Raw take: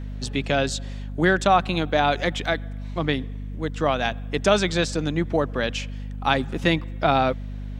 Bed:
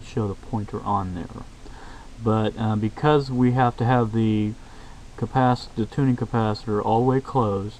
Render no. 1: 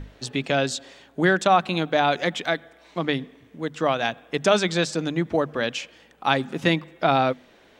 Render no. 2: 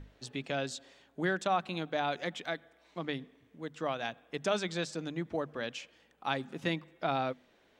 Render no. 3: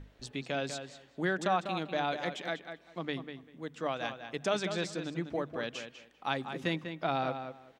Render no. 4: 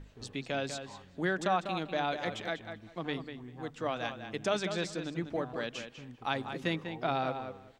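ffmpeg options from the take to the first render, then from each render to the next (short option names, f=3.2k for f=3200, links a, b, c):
-af "bandreject=f=50:t=h:w=6,bandreject=f=100:t=h:w=6,bandreject=f=150:t=h:w=6,bandreject=f=200:t=h:w=6,bandreject=f=250:t=h:w=6"
-af "volume=-12dB"
-filter_complex "[0:a]asplit=2[a][b];[b]adelay=196,lowpass=f=3.7k:p=1,volume=-8dB,asplit=2[c][d];[d]adelay=196,lowpass=f=3.7k:p=1,volume=0.19,asplit=2[e][f];[f]adelay=196,lowpass=f=3.7k:p=1,volume=0.19[g];[a][c][e][g]amix=inputs=4:normalize=0"
-filter_complex "[1:a]volume=-28.5dB[a];[0:a][a]amix=inputs=2:normalize=0"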